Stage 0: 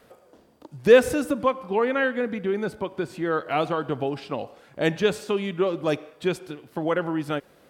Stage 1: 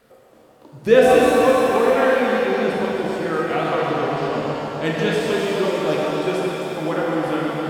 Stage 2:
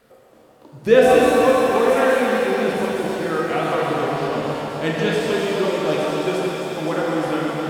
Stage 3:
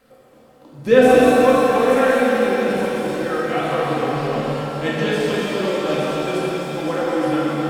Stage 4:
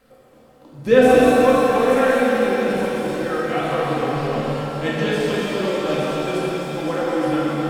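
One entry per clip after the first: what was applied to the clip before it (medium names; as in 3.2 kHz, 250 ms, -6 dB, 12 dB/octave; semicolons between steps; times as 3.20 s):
backward echo that repeats 130 ms, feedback 76%, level -5.5 dB; pitch-shifted reverb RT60 2.2 s, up +7 st, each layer -8 dB, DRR -2.5 dB; trim -2 dB
feedback echo behind a high-pass 868 ms, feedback 59%, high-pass 4.3 kHz, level -5 dB
reverberation RT60 0.60 s, pre-delay 4 ms, DRR 1.5 dB; trim -2 dB
bass shelf 68 Hz +7 dB; trim -1 dB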